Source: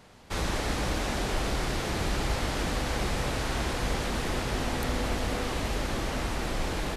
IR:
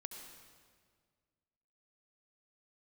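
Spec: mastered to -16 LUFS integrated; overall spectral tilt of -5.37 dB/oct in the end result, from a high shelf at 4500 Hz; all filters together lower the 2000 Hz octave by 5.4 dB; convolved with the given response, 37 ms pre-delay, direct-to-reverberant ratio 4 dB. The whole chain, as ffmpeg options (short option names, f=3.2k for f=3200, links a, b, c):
-filter_complex "[0:a]equalizer=f=2k:t=o:g=-5.5,highshelf=f=4.5k:g=-7.5,asplit=2[a][b];[1:a]atrim=start_sample=2205,adelay=37[c];[b][c]afir=irnorm=-1:irlink=0,volume=-0.5dB[d];[a][d]amix=inputs=2:normalize=0,volume=14.5dB"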